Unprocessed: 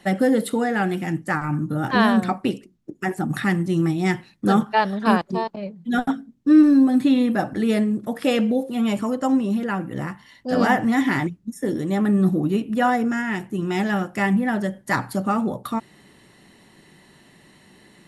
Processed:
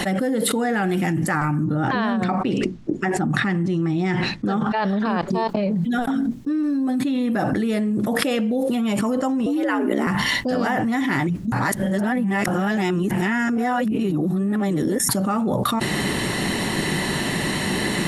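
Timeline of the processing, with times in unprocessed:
0:01.64–0:05.28: high-frequency loss of the air 93 metres
0:09.46–0:10.07: frequency shifter +85 Hz
0:11.52–0:15.09: reverse
whole clip: envelope flattener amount 100%; level −11.5 dB

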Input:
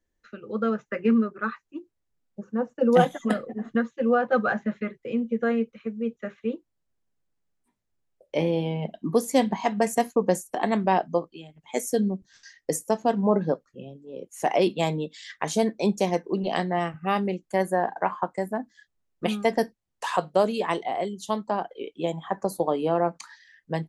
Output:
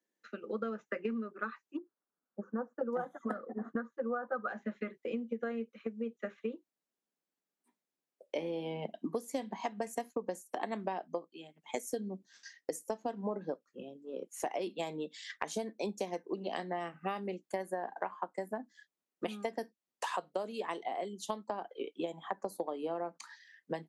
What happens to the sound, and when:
0:01.77–0:04.48: high shelf with overshoot 1,900 Hz −11 dB, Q 3
whole clip: high-pass filter 210 Hz 24 dB per octave; transient designer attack +4 dB, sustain 0 dB; downward compressor 6 to 1, threshold −29 dBFS; level −4.5 dB

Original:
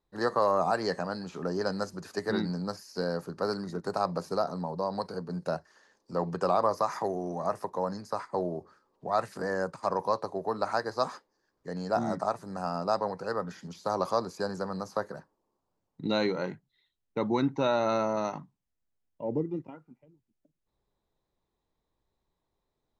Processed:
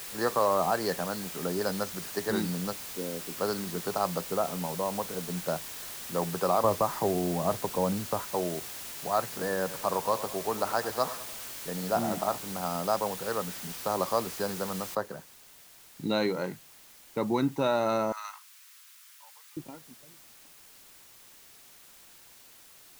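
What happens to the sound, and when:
0:02.73–0:03.37: resonant band-pass 300 Hz, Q 1.6
0:04.21–0:05.23: Savitzky-Golay smoothing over 41 samples
0:06.64–0:08.27: spectral tilt −3 dB per octave
0:09.21–0:12.38: repeating echo 99 ms, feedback 51%, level −14.5 dB
0:14.95: noise floor change −41 dB −54 dB
0:18.12–0:19.57: Butterworth high-pass 1,100 Hz

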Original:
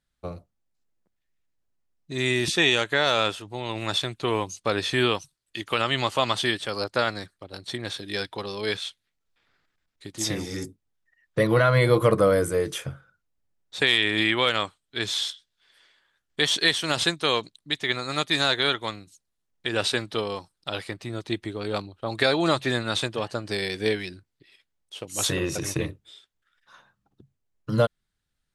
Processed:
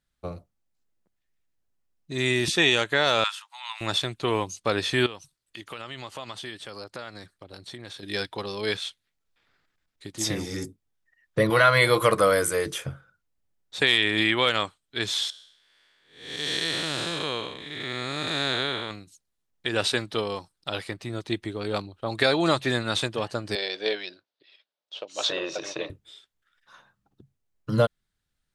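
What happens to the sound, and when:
0:03.24–0:03.81: Butterworth high-pass 920 Hz 48 dB per octave
0:05.06–0:08.03: downward compressor 2.5 to 1, threshold −40 dBFS
0:11.50–0:12.66: tilt shelving filter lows −7.5 dB, about 630 Hz
0:15.30–0:18.91: spectrum smeared in time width 302 ms
0:23.55–0:25.90: loudspeaker in its box 480–5,300 Hz, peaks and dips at 600 Hz +8 dB, 2,000 Hz −5 dB, 3,700 Hz +4 dB

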